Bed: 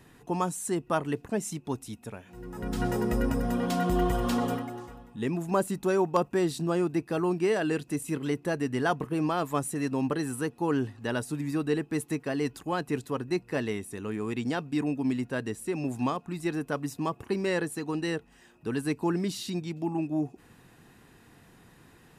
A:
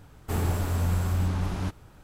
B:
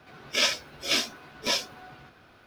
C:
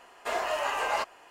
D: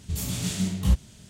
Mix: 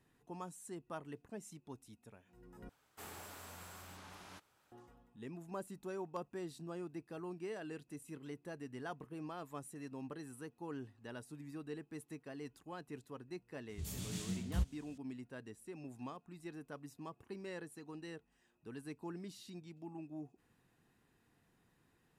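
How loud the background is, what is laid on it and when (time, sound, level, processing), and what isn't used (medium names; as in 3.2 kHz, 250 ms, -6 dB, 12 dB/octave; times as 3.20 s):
bed -18 dB
2.69 s: replace with A -12 dB + high-pass 1.2 kHz 6 dB/octave
13.69 s: add D -14 dB
not used: B, C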